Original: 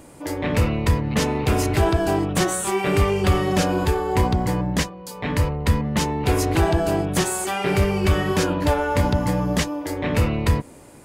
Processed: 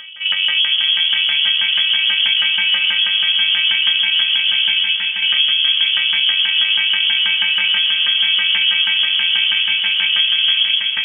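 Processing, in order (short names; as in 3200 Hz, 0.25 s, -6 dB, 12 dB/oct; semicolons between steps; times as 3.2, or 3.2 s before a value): sample sorter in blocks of 128 samples; low shelf 170 Hz +6.5 dB; split-band echo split 650 Hz, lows 0.123 s, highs 0.457 s, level -5.5 dB; LFO low-pass saw down 6.2 Hz 390–1700 Hz; limiter -13 dBFS, peak gain reduction 11 dB; inverted band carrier 3300 Hz; compressor 5:1, threshold -19 dBFS, peak gain reduction 5 dB; on a send: diffused feedback echo 0.476 s, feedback 59%, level -9.5 dB; on the sum: gain +7 dB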